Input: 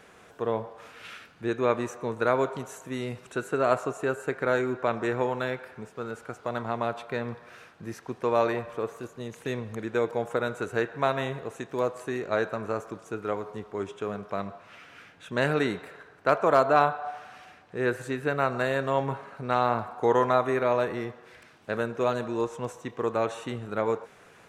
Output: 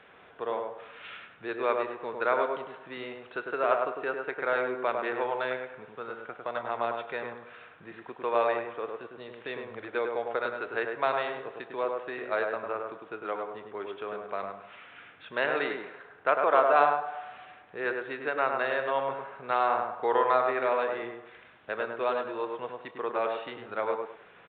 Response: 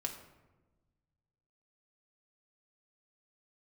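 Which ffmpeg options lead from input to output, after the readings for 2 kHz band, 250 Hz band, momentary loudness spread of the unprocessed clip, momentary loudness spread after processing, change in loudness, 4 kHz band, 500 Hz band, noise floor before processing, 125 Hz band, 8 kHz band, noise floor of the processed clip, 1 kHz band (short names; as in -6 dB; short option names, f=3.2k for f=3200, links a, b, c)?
+0.5 dB, -9.0 dB, 14 LU, 16 LU, -2.0 dB, -2.5 dB, -2.5 dB, -54 dBFS, -18.0 dB, under -30 dB, -54 dBFS, 0.0 dB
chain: -filter_complex "[0:a]lowshelf=f=410:g=-8,acrossover=split=320[a][b];[a]acompressor=threshold=-55dB:ratio=6[c];[c][b]amix=inputs=2:normalize=0,aresample=8000,aresample=44100,asplit=2[d][e];[e]adelay=102,lowpass=f=1.4k:p=1,volume=-3dB,asplit=2[f][g];[g]adelay=102,lowpass=f=1.4k:p=1,volume=0.27,asplit=2[h][i];[i]adelay=102,lowpass=f=1.4k:p=1,volume=0.27,asplit=2[j][k];[k]adelay=102,lowpass=f=1.4k:p=1,volume=0.27[l];[d][f][h][j][l]amix=inputs=5:normalize=0"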